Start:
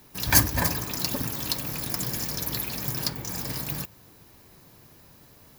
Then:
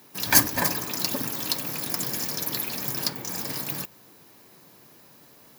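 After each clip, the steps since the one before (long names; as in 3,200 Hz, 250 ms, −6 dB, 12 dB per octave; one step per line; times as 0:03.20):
high-pass filter 190 Hz 12 dB per octave
level +1.5 dB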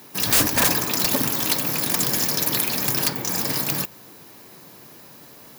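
wrap-around overflow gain 18 dB
level +7.5 dB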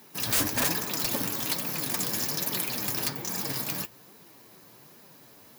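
flanger 1.2 Hz, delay 4.2 ms, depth 6.6 ms, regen +45%
level −3.5 dB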